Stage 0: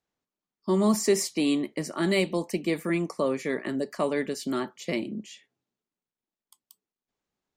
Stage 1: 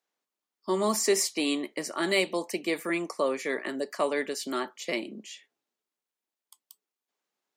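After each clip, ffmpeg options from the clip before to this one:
-af "highpass=270,lowshelf=f=360:g=-8,volume=1.33"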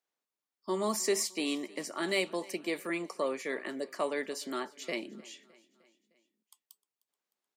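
-af "aecho=1:1:306|612|918|1224:0.075|0.042|0.0235|0.0132,volume=0.562"

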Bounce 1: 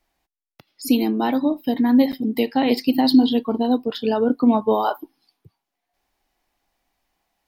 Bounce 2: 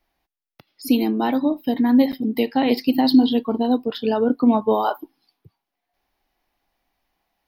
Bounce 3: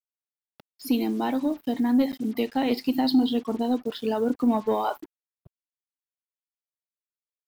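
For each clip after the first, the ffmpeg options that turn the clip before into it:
-af "equalizer=f=7700:w=2.5:g=-13"
-af "acrusher=bits=6:mix=0:aa=0.5,asoftclip=type=tanh:threshold=0.473,volume=0.562"

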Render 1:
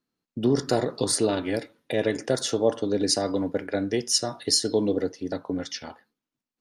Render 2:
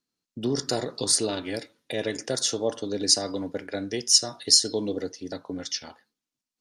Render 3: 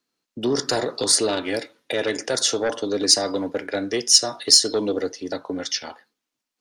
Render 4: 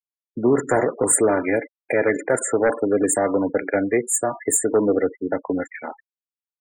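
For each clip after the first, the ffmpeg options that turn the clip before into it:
-af "equalizer=f=6100:w=0.58:g=10.5,volume=0.562"
-filter_complex "[0:a]acrossover=split=290|3300[s0][s1][s2];[s1]aeval=exprs='0.15*sin(PI/2*2*val(0)/0.15)':c=same[s3];[s2]acontrast=23[s4];[s0][s3][s4]amix=inputs=3:normalize=0,volume=0.891"
-af "aexciter=amount=1.4:drive=4.6:freq=5700,asuperstop=centerf=4300:order=20:qfactor=0.87,afftfilt=real='re*gte(hypot(re,im),0.0251)':imag='im*gte(hypot(re,im),0.0251)':win_size=1024:overlap=0.75,volume=1.78"

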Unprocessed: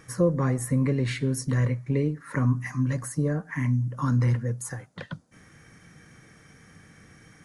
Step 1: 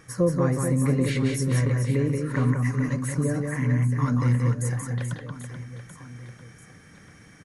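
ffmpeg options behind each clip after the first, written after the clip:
-af "aecho=1:1:180|432|784.8|1279|1970:0.631|0.398|0.251|0.158|0.1"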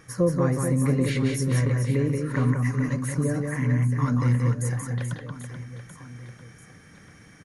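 -af "bandreject=f=7900:w=15"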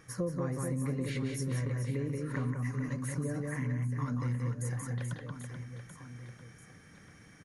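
-af "acompressor=threshold=0.0447:ratio=2.5,volume=0.531"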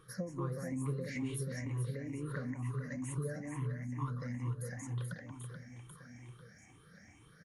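-af "afftfilt=real='re*pow(10,17/40*sin(2*PI*(0.64*log(max(b,1)*sr/1024/100)/log(2)-(2.2)*(pts-256)/sr)))':imag='im*pow(10,17/40*sin(2*PI*(0.64*log(max(b,1)*sr/1024/100)/log(2)-(2.2)*(pts-256)/sr)))':win_size=1024:overlap=0.75,volume=0.422"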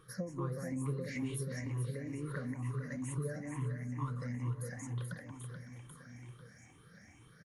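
-af "aecho=1:1:559|1118|1677|2236:0.1|0.055|0.0303|0.0166"

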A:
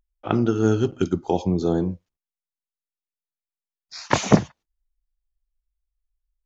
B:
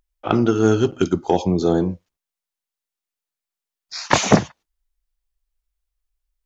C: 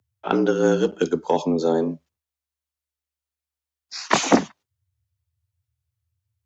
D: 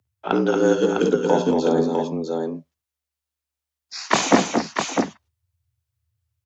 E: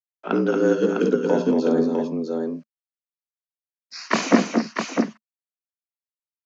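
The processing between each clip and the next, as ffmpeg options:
-af "lowshelf=f=280:g=-6,acontrast=74"
-af "afreqshift=72,volume=0.75"
-af "aecho=1:1:53|69|218|231|654:0.251|0.2|0.224|0.501|0.562"
-af "acrusher=bits=9:mix=0:aa=0.000001,highpass=180,equalizer=f=220:t=q:w=4:g=8,equalizer=f=830:t=q:w=4:g=-9,equalizer=f=3500:t=q:w=4:g=-9,lowpass=f=5700:w=0.5412,lowpass=f=5700:w=1.3066,volume=0.891"

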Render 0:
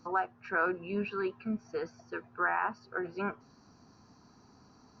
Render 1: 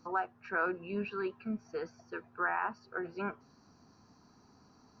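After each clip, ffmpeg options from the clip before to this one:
-af "bandreject=f=60:t=h:w=6,bandreject=f=120:t=h:w=6,volume=0.75"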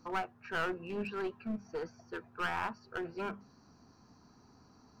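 -af "lowshelf=f=140:g=5.5,bandreject=f=50:t=h:w=6,bandreject=f=100:t=h:w=6,bandreject=f=150:t=h:w=6,bandreject=f=200:t=h:w=6,aeval=exprs='clip(val(0),-1,0.0168)':c=same"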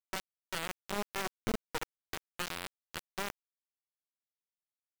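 -filter_complex "[0:a]acrossover=split=2400[s0][s1];[s0]dynaudnorm=f=200:g=5:m=1.78[s2];[s2][s1]amix=inputs=2:normalize=0,alimiter=level_in=1.5:limit=0.0631:level=0:latency=1:release=156,volume=0.668,acrusher=bits=4:mix=0:aa=0.000001"

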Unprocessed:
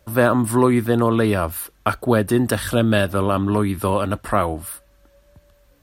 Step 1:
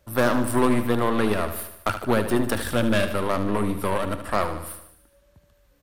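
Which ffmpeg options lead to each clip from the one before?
-filter_complex "[0:a]aeval=exprs='0.708*(cos(1*acos(clip(val(0)/0.708,-1,1)))-cos(1*PI/2))+0.0794*(cos(8*acos(clip(val(0)/0.708,-1,1)))-cos(8*PI/2))':c=same,asplit=2[s0][s1];[s1]aecho=0:1:75|150|225|300|375|450:0.316|0.177|0.0992|0.0555|0.0311|0.0174[s2];[s0][s2]amix=inputs=2:normalize=0,volume=0.531"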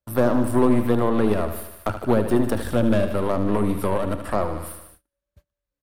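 -filter_complex "[0:a]agate=range=0.0355:threshold=0.00251:ratio=16:detection=peak,acrossover=split=920[s0][s1];[s1]acompressor=threshold=0.0126:ratio=6[s2];[s0][s2]amix=inputs=2:normalize=0,volume=1.41"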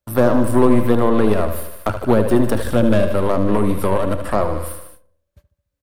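-filter_complex "[0:a]asplit=2[s0][s1];[s1]adelay=73,lowpass=f=990:p=1,volume=0.251,asplit=2[s2][s3];[s3]adelay=73,lowpass=f=990:p=1,volume=0.54,asplit=2[s4][s5];[s5]adelay=73,lowpass=f=990:p=1,volume=0.54,asplit=2[s6][s7];[s7]adelay=73,lowpass=f=990:p=1,volume=0.54,asplit=2[s8][s9];[s9]adelay=73,lowpass=f=990:p=1,volume=0.54,asplit=2[s10][s11];[s11]adelay=73,lowpass=f=990:p=1,volume=0.54[s12];[s0][s2][s4][s6][s8][s10][s12]amix=inputs=7:normalize=0,volume=1.68"

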